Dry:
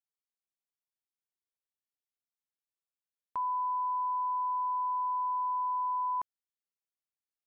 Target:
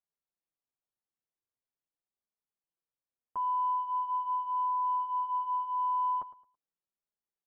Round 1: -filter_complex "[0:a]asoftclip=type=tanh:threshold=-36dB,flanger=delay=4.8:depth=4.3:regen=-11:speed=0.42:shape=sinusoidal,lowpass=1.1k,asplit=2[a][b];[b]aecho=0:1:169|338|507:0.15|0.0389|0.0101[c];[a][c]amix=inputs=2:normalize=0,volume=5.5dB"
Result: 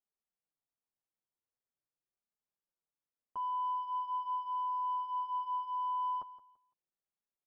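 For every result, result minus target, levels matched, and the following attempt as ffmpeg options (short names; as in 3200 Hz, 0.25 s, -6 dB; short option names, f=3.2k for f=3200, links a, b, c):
echo 60 ms late; soft clip: distortion +11 dB
-filter_complex "[0:a]asoftclip=type=tanh:threshold=-36dB,flanger=delay=4.8:depth=4.3:regen=-11:speed=0.42:shape=sinusoidal,lowpass=1.1k,asplit=2[a][b];[b]aecho=0:1:109|218|327:0.15|0.0389|0.0101[c];[a][c]amix=inputs=2:normalize=0,volume=5.5dB"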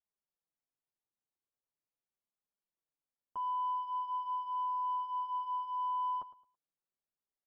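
soft clip: distortion +11 dB
-filter_complex "[0:a]asoftclip=type=tanh:threshold=-27.5dB,flanger=delay=4.8:depth=4.3:regen=-11:speed=0.42:shape=sinusoidal,lowpass=1.1k,asplit=2[a][b];[b]aecho=0:1:109|218|327:0.15|0.0389|0.0101[c];[a][c]amix=inputs=2:normalize=0,volume=5.5dB"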